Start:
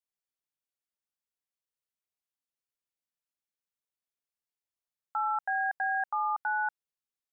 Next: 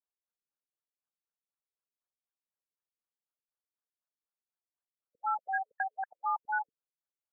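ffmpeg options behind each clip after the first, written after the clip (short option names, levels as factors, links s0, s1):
-af "aemphasis=mode=production:type=riaa,afftfilt=real='re*lt(b*sr/1024,440*pow(1800/440,0.5+0.5*sin(2*PI*4*pts/sr)))':imag='im*lt(b*sr/1024,440*pow(1800/440,0.5+0.5*sin(2*PI*4*pts/sr)))':win_size=1024:overlap=0.75"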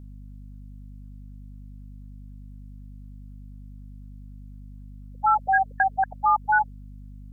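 -filter_complex "[0:a]aeval=exprs='val(0)+0.00158*(sin(2*PI*50*n/s)+sin(2*PI*2*50*n/s)/2+sin(2*PI*3*50*n/s)/3+sin(2*PI*4*50*n/s)/4+sin(2*PI*5*50*n/s)/5)':c=same,asplit=2[s0][s1];[s1]alimiter=level_in=2.82:limit=0.0631:level=0:latency=1:release=82,volume=0.355,volume=1.06[s2];[s0][s2]amix=inputs=2:normalize=0,volume=2.82"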